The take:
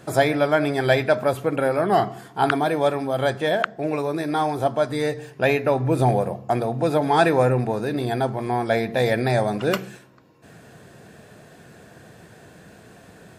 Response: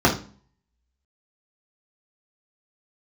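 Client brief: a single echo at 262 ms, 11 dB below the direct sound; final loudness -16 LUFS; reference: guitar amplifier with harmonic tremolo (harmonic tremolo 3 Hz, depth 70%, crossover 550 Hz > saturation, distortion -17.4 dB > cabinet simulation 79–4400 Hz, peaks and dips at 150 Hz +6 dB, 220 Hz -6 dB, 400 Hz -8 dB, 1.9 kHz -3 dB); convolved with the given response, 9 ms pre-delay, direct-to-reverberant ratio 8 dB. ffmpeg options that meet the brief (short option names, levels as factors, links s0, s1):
-filter_complex "[0:a]aecho=1:1:262:0.282,asplit=2[s0][s1];[1:a]atrim=start_sample=2205,adelay=9[s2];[s1][s2]afir=irnorm=-1:irlink=0,volume=0.0398[s3];[s0][s3]amix=inputs=2:normalize=0,acrossover=split=550[s4][s5];[s4]aeval=exprs='val(0)*(1-0.7/2+0.7/2*cos(2*PI*3*n/s))':c=same[s6];[s5]aeval=exprs='val(0)*(1-0.7/2-0.7/2*cos(2*PI*3*n/s))':c=same[s7];[s6][s7]amix=inputs=2:normalize=0,asoftclip=threshold=0.211,highpass=79,equalizer=f=150:t=q:w=4:g=6,equalizer=f=220:t=q:w=4:g=-6,equalizer=f=400:t=q:w=4:g=-8,equalizer=f=1900:t=q:w=4:g=-3,lowpass=f=4400:w=0.5412,lowpass=f=4400:w=1.3066,volume=2.99"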